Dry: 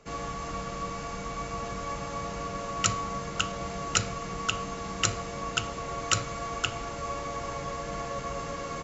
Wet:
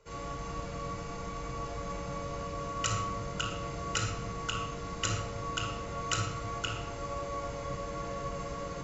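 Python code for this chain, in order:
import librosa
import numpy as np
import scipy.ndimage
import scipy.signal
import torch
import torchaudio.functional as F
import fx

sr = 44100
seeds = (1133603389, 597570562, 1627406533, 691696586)

y = fx.room_shoebox(x, sr, seeds[0], volume_m3=3200.0, walls='furnished', distance_m=4.8)
y = y * 10.0 ** (-9.0 / 20.0)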